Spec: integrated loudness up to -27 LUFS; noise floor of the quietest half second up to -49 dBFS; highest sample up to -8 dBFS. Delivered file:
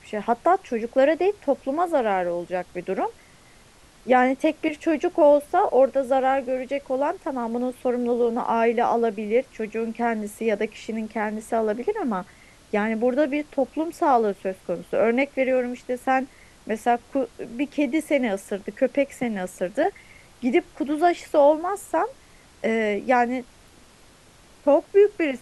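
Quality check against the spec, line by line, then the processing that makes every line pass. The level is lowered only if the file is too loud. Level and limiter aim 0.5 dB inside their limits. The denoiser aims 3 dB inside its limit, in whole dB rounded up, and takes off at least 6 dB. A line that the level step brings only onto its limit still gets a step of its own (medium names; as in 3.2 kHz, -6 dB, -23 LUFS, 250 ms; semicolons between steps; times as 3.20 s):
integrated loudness -23.5 LUFS: fail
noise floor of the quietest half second -52 dBFS: pass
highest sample -6.0 dBFS: fail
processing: trim -4 dB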